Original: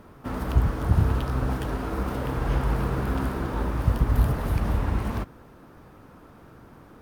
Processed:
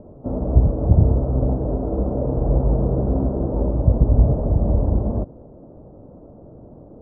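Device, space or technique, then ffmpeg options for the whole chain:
under water: -af "lowpass=f=660:w=0.5412,lowpass=f=660:w=1.3066,equalizer=f=600:t=o:w=0.42:g=7,volume=6.5dB"

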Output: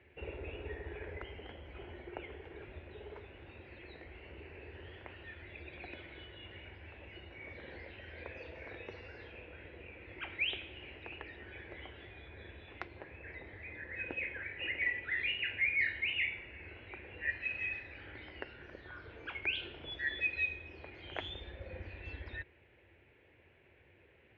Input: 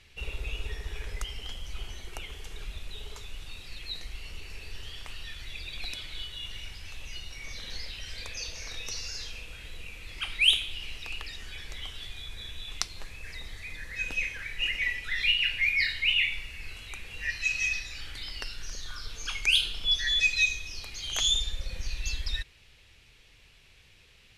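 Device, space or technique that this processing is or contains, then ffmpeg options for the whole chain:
bass cabinet: -af "highpass=f=79:w=0.5412,highpass=f=79:w=1.3066,equalizer=f=120:t=q:w=4:g=-7,equalizer=f=180:t=q:w=4:g=-9,equalizer=f=350:t=q:w=4:g=8,equalizer=f=560:t=q:w=4:g=4,equalizer=f=1.2k:t=q:w=4:g=-10,lowpass=f=2.1k:w=0.5412,lowpass=f=2.1k:w=1.3066,highshelf=f=4.6k:g=-10.5,volume=1dB"

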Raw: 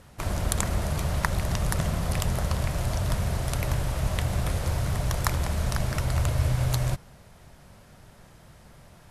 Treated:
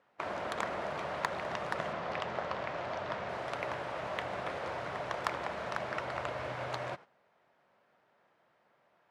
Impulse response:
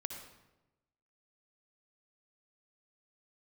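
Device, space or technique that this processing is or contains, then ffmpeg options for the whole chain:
walkie-talkie: -filter_complex "[0:a]highpass=440,lowpass=2.3k,asoftclip=type=hard:threshold=-18.5dB,agate=range=-12dB:threshold=-49dB:ratio=16:detection=peak,asettb=1/sr,asplit=3[a][b][c];[a]atrim=end=1.934[d];[b]atrim=start=1.93:end=3.29,asetpts=PTS-STARTPTS,afade=t=in:d=0.004:c=qsin,afade=t=out:st=1.356:d=0.004:c=qsin,lowpass=6.2k[e];[c]atrim=start=3.286[f];[d][e]acrossfade=d=0.004:c1=hsin:c2=qsin[g];[g][f]acrossfade=d=0.004:c1=qsin:c2=hsin"

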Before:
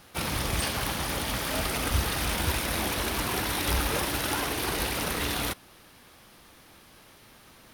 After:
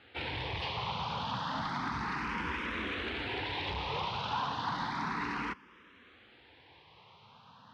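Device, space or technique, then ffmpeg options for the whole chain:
barber-pole phaser into a guitar amplifier: -filter_complex "[0:a]asplit=2[a][b];[b]afreqshift=0.32[c];[a][c]amix=inputs=2:normalize=1,asoftclip=type=tanh:threshold=-28dB,highpass=99,equalizer=f=340:t=q:w=4:g=-4,equalizer=f=610:t=q:w=4:g=-9,equalizer=f=970:t=q:w=4:g=8,lowpass=f=3.8k:w=0.5412,lowpass=f=3.8k:w=1.3066"

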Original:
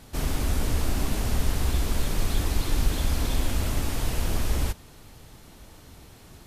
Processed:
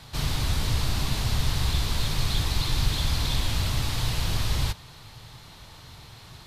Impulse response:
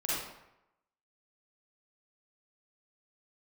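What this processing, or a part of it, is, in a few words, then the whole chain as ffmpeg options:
one-band saturation: -filter_complex "[0:a]acrossover=split=370|2800[a][b][c];[b]asoftclip=type=tanh:threshold=-39dB[d];[a][d][c]amix=inputs=3:normalize=0,equalizer=f=125:t=o:w=1:g=11,equalizer=f=250:t=o:w=1:g=-5,equalizer=f=1k:t=o:w=1:g=8,equalizer=f=2k:t=o:w=1:g=4,equalizer=f=4k:t=o:w=1:g=12,volume=-3dB"

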